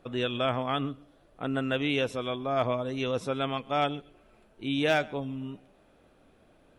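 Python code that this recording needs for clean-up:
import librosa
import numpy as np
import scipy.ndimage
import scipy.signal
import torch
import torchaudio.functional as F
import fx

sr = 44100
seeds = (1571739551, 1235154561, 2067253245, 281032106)

y = fx.fix_declip(x, sr, threshold_db=-16.5)
y = fx.fix_echo_inverse(y, sr, delay_ms=131, level_db=-23.5)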